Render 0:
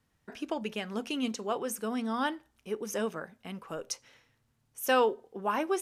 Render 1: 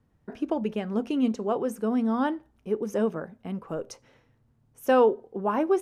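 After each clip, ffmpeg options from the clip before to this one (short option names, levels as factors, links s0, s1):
-af "tiltshelf=f=1300:g=9"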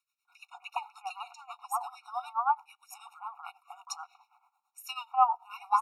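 -filter_complex "[0:a]acrossover=split=1800[s0][s1];[s0]adelay=250[s2];[s2][s1]amix=inputs=2:normalize=0,tremolo=f=9.2:d=0.81,afftfilt=real='re*eq(mod(floor(b*sr/1024/730),2),1)':imag='im*eq(mod(floor(b*sr/1024/730),2),1)':win_size=1024:overlap=0.75,volume=2.37"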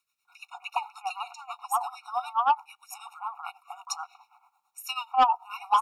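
-af "asoftclip=type=tanh:threshold=0.112,volume=2"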